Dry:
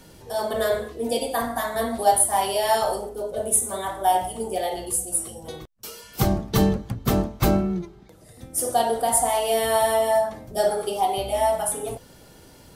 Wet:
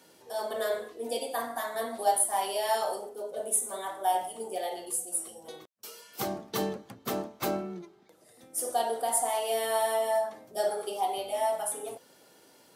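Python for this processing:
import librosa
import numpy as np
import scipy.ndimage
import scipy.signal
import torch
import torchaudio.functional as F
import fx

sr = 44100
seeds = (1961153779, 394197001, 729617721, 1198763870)

y = scipy.signal.sosfilt(scipy.signal.butter(2, 310.0, 'highpass', fs=sr, output='sos'), x)
y = y * 10.0 ** (-7.0 / 20.0)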